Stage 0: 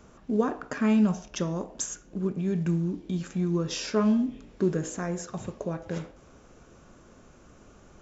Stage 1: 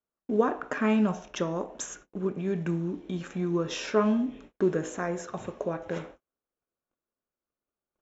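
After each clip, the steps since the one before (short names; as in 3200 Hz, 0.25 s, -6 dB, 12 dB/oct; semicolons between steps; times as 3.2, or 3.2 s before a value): gate -46 dBFS, range -41 dB; tone controls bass -10 dB, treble -9 dB; notch 4700 Hz, Q 7.2; gain +3.5 dB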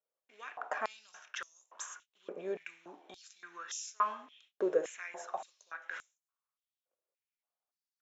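stepped high-pass 3.5 Hz 520–6800 Hz; gain -7.5 dB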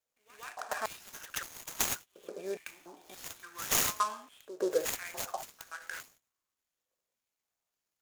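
synth low-pass 6900 Hz, resonance Q 9.9; pre-echo 0.128 s -14 dB; noise-modulated delay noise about 5400 Hz, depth 0.031 ms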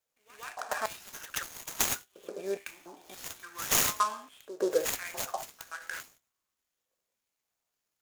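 resonator 66 Hz, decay 0.22 s, harmonics all, mix 40%; gain +5 dB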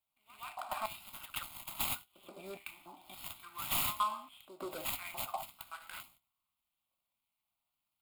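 soft clip -24.5 dBFS, distortion -11 dB; fixed phaser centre 1700 Hz, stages 6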